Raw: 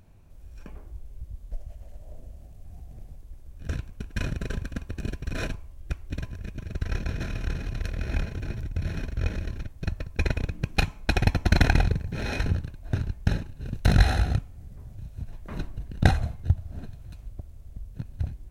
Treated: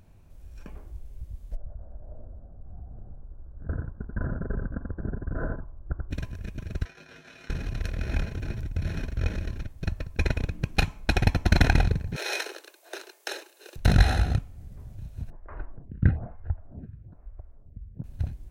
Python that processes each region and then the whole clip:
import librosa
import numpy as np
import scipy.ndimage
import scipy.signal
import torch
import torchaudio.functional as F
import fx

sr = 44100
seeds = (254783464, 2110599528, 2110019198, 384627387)

y = fx.chain(x, sr, fx.ellip_lowpass(hz=1500.0, order=4, stop_db=40),
    fx.echo_single(ms=87, db=-4.5), at=(1.55, 6.11))
y = fx.chain(y, sr, fx.weighting(curve='A'),
    fx.over_compress(threshold_db=-42.0, ratio=-0.5),
    fx.comb_fb(f0_hz=52.0, decay_s=0.2, harmonics='odd', damping=0.0, mix_pct=90), at=(6.85, 7.5))
y = fx.chain(y, sr, fx.steep_highpass(hz=340.0, slope=72),
    fx.high_shelf(hz=3500.0, db=11.5), at=(12.16, 13.76))
y = fx.chain(y, sr, fx.lowpass(hz=1700.0, slope=24),
    fx.stagger_phaser(hz=1.1), at=(15.3, 18.04))